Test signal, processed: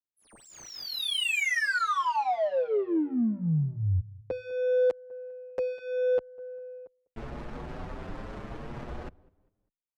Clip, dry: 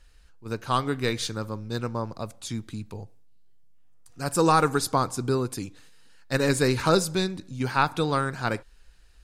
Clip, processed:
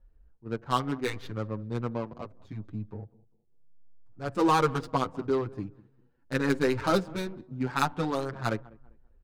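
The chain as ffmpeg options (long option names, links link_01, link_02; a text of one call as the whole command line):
ffmpeg -i in.wav -filter_complex "[0:a]aecho=1:1:200|400|600:0.0944|0.033|0.0116,adynamicsmooth=sensitivity=2.5:basefreq=690,asplit=2[link_01][link_02];[link_02]adelay=7.2,afreqshift=0.73[link_03];[link_01][link_03]amix=inputs=2:normalize=1" out.wav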